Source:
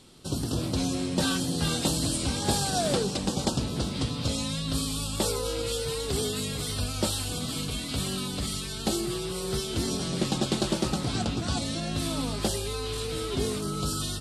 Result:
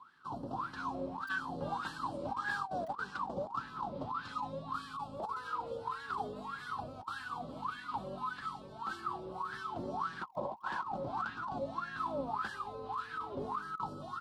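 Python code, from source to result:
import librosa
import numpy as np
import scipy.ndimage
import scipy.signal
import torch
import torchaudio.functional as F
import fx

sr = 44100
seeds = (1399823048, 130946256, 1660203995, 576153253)

p1 = fx.octave_divider(x, sr, octaves=2, level_db=1.0)
p2 = fx.spec_paint(p1, sr, seeds[0], shape='noise', start_s=10.22, length_s=0.62, low_hz=470.0, high_hz=1100.0, level_db=-30.0)
p3 = fx.peak_eq(p2, sr, hz=650.0, db=-9.5, octaves=0.31)
p4 = fx.wah_lfo(p3, sr, hz=1.7, low_hz=550.0, high_hz=1700.0, q=22.0)
p5 = (np.mod(10.0 ** (37.0 / 20.0) * p4 + 1.0, 2.0) - 1.0) / 10.0 ** (37.0 / 20.0)
p6 = p4 + (p5 * 10.0 ** (-10.0 / 20.0))
p7 = fx.graphic_eq(p6, sr, hz=(125, 250, 500, 1000, 2000, 8000), db=(6, 4, -9, 9, -9, -6))
p8 = fx.over_compress(p7, sr, threshold_db=-49.0, ratio=-0.5)
y = p8 * 10.0 ** (12.5 / 20.0)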